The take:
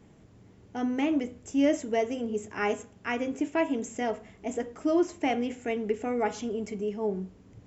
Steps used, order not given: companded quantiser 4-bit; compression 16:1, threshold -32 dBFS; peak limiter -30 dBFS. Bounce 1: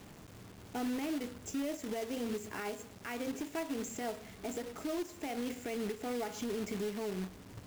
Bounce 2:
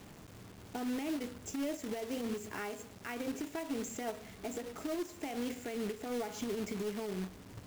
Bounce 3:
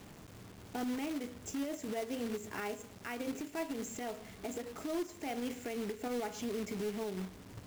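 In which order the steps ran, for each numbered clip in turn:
compression > peak limiter > companded quantiser; compression > companded quantiser > peak limiter; companded quantiser > compression > peak limiter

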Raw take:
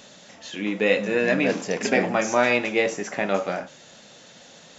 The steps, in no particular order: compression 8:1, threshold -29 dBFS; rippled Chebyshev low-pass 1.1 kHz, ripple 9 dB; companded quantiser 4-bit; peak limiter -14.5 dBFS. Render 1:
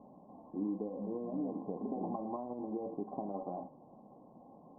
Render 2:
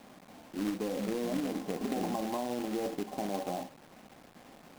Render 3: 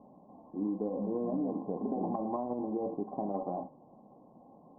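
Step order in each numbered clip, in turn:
companded quantiser > peak limiter > compression > rippled Chebyshev low-pass; peak limiter > rippled Chebyshev low-pass > companded quantiser > compression; companded quantiser > peak limiter > rippled Chebyshev low-pass > compression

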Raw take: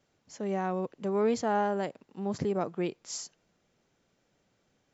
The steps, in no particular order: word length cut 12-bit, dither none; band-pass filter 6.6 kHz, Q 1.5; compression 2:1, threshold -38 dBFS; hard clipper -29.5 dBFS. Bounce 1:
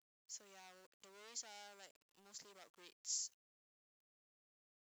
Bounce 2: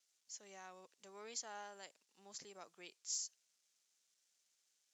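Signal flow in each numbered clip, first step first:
hard clipper > compression > band-pass filter > word length cut; word length cut > band-pass filter > hard clipper > compression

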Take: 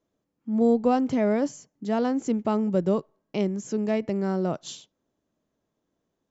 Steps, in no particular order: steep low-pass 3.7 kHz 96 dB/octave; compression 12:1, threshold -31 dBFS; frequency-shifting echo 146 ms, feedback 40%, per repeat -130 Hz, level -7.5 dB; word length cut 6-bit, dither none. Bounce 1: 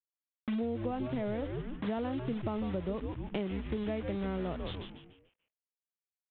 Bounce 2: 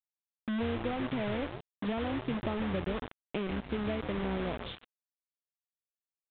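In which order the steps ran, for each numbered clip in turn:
word length cut > steep low-pass > frequency-shifting echo > compression; compression > frequency-shifting echo > word length cut > steep low-pass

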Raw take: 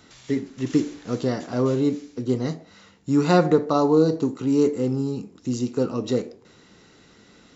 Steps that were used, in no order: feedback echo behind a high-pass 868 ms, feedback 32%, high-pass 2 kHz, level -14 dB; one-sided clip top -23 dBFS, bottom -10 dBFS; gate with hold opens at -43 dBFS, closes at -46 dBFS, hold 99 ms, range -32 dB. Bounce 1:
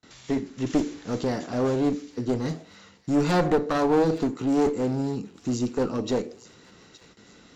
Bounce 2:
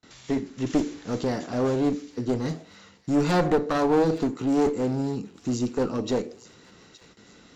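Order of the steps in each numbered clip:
gate with hold > one-sided clip > feedback echo behind a high-pass; one-sided clip > gate with hold > feedback echo behind a high-pass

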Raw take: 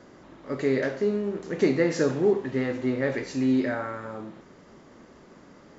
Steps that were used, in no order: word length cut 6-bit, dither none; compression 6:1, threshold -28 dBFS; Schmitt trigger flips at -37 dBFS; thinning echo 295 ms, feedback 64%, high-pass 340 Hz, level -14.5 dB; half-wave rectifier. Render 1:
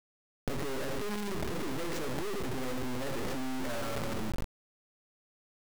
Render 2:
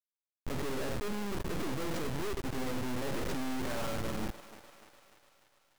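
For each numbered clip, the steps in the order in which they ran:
thinning echo > Schmitt trigger > half-wave rectifier > compression > word length cut; compression > Schmitt trigger > word length cut > thinning echo > half-wave rectifier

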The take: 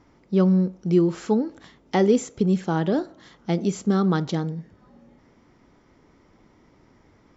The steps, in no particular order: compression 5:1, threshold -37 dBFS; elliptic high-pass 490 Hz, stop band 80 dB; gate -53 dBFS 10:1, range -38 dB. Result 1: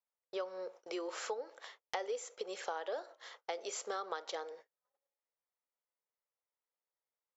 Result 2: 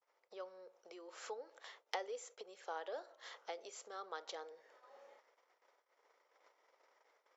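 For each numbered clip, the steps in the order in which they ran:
elliptic high-pass > compression > gate; compression > gate > elliptic high-pass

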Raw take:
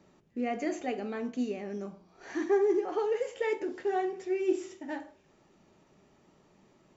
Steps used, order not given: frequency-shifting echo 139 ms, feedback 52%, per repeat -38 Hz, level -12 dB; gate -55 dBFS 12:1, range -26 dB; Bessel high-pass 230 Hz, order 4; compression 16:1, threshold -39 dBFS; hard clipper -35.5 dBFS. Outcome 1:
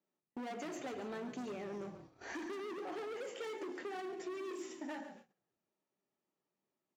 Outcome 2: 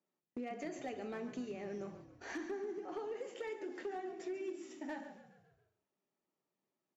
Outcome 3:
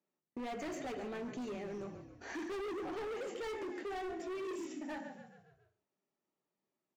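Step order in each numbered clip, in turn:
hard clipper > Bessel high-pass > compression > frequency-shifting echo > gate; Bessel high-pass > gate > compression > hard clipper > frequency-shifting echo; Bessel high-pass > gate > frequency-shifting echo > hard clipper > compression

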